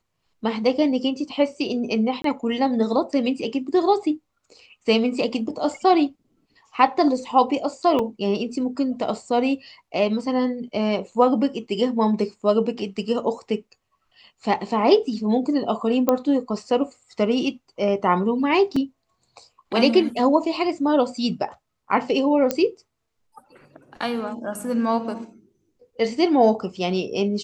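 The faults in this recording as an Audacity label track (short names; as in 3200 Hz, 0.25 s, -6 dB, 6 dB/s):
2.220000	2.240000	gap 23 ms
7.990000	7.990000	gap 3.7 ms
16.090000	16.090000	pop -6 dBFS
18.760000	18.760000	gap 4.1 ms
22.510000	22.510000	pop -7 dBFS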